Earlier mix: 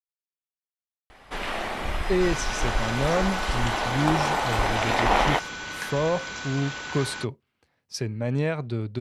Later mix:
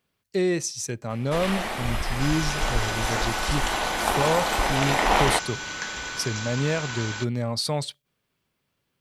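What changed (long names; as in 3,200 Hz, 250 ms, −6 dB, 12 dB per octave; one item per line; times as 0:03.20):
speech: entry −1.75 s
master: remove low-pass filter 3,800 Hz 6 dB per octave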